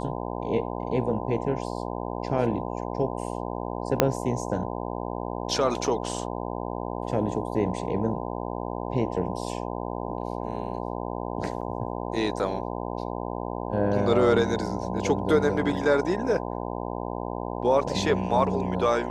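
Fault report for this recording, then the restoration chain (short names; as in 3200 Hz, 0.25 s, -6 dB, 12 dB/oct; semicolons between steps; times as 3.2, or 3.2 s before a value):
buzz 60 Hz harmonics 17 -32 dBFS
4 pop -3 dBFS
11.61–11.62 gap 5.7 ms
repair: de-click; de-hum 60 Hz, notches 17; interpolate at 11.61, 5.7 ms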